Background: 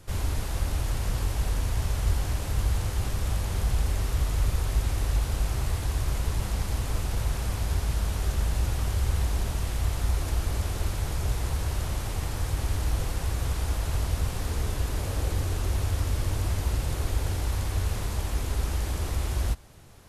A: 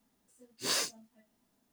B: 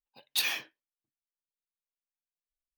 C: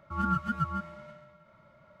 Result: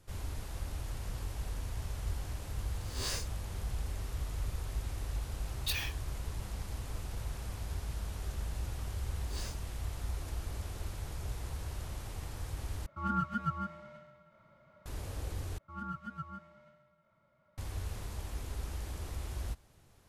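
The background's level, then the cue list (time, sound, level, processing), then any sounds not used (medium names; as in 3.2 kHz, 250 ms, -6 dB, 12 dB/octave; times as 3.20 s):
background -11.5 dB
2.36 s: add A -8.5 dB + reverse spectral sustain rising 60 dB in 0.53 s
5.31 s: add B -6.5 dB
8.67 s: add A -15 dB
12.86 s: replace with C -4 dB
15.58 s: replace with C -12.5 dB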